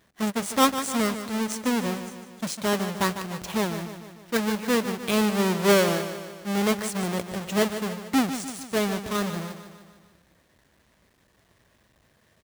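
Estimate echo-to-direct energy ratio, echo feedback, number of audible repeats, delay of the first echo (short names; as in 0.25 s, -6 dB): -9.0 dB, 55%, 5, 0.15 s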